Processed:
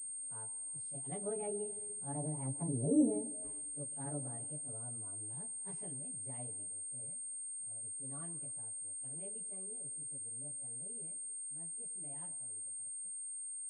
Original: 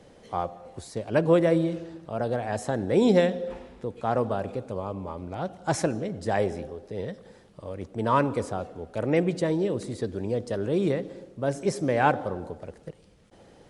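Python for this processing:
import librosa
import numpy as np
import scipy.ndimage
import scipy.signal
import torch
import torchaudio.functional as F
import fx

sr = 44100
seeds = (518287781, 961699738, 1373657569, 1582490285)

y = fx.pitch_bins(x, sr, semitones=3.5)
y = fx.doppler_pass(y, sr, speed_mps=9, closest_m=2.7, pass_at_s=2.96)
y = scipy.signal.sosfilt(scipy.signal.butter(2, 47.0, 'highpass', fs=sr, output='sos'), y)
y = fx.peak_eq(y, sr, hz=1300.0, db=-14.0, octaves=2.8)
y = y + 0.76 * np.pad(y, (int(7.0 * sr / 1000.0), 0))[:len(y)]
y = fx.env_lowpass_down(y, sr, base_hz=450.0, full_db=-34.0)
y = fx.rider(y, sr, range_db=4, speed_s=2.0)
y = fx.pwm(y, sr, carrier_hz=8600.0)
y = F.gain(torch.from_numpy(y), -1.5).numpy()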